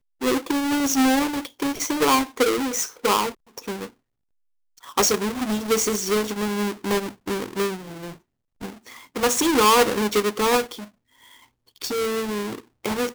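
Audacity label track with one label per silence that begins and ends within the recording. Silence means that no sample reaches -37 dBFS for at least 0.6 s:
3.870000	4.840000	silence
10.840000	11.810000	silence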